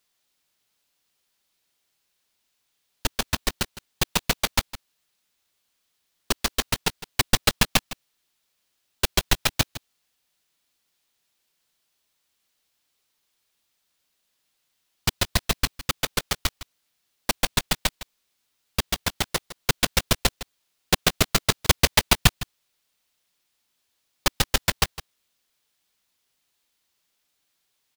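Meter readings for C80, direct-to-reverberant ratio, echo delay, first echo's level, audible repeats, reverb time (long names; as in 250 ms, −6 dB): no reverb audible, no reverb audible, 159 ms, −15.5 dB, 1, no reverb audible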